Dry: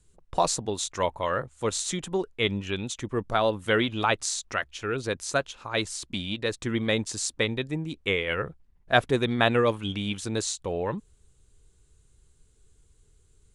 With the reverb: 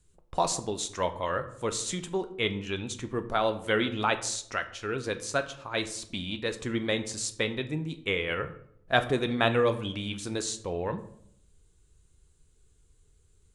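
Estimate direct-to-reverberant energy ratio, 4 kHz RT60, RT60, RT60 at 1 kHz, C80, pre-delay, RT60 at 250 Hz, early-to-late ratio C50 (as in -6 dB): 8.0 dB, 0.40 s, 0.65 s, 0.60 s, 16.5 dB, 5 ms, 0.85 s, 13.5 dB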